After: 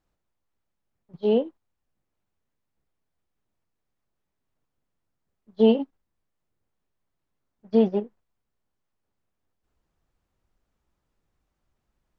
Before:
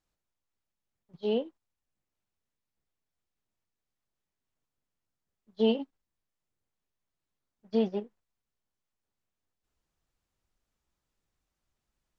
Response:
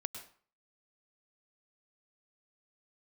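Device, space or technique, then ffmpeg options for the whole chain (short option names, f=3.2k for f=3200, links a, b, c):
through cloth: -af "highshelf=f=2.4k:g=-11,volume=8dB"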